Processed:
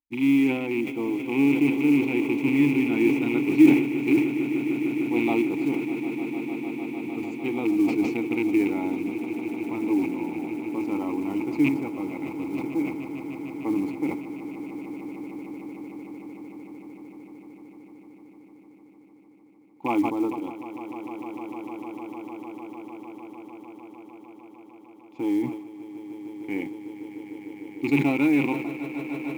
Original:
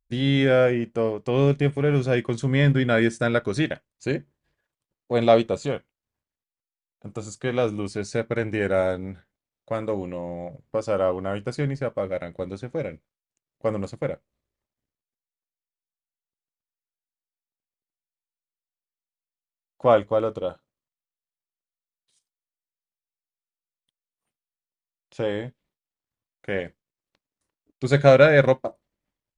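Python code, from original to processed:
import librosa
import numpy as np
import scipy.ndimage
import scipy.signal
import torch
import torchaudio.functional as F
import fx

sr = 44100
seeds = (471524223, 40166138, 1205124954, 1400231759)

p1 = fx.rattle_buzz(x, sr, strikes_db=-23.0, level_db=-15.0)
p2 = fx.dynamic_eq(p1, sr, hz=320.0, q=3.6, threshold_db=-39.0, ratio=4.0, max_db=6)
p3 = fx.rider(p2, sr, range_db=3, speed_s=0.5)
p4 = p2 + F.gain(torch.from_numpy(p3), 2.5).numpy()
p5 = fx.vowel_filter(p4, sr, vowel='u')
p6 = fx.quant_float(p5, sr, bits=4)
p7 = p6 + fx.echo_swell(p6, sr, ms=151, loudest=8, wet_db=-15.0, dry=0)
y = fx.sustainer(p7, sr, db_per_s=72.0)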